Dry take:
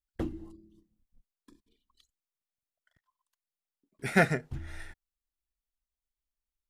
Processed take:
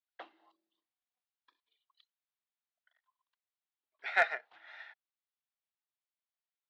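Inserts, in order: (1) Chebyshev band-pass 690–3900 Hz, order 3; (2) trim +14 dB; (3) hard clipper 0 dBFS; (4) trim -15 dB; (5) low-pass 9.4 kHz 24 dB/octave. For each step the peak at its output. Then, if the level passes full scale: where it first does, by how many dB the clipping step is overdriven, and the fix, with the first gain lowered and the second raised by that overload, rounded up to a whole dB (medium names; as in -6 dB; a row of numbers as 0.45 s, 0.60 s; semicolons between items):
-11.0 dBFS, +3.0 dBFS, 0.0 dBFS, -15.0 dBFS, -14.5 dBFS; step 2, 3.0 dB; step 2 +11 dB, step 4 -12 dB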